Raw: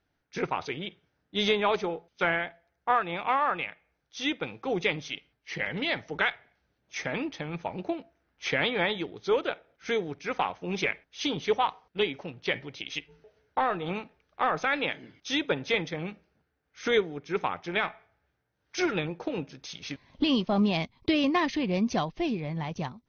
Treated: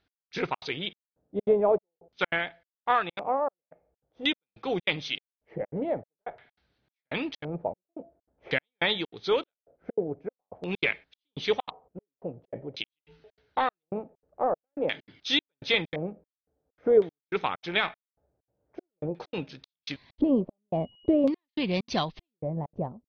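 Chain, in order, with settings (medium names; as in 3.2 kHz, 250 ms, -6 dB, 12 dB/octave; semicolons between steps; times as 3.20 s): trance gate "x...xxx.xxx" 194 bpm -60 dB; 20.73–21.23 s: whistle 2.9 kHz -29 dBFS; LFO low-pass square 0.47 Hz 590–4100 Hz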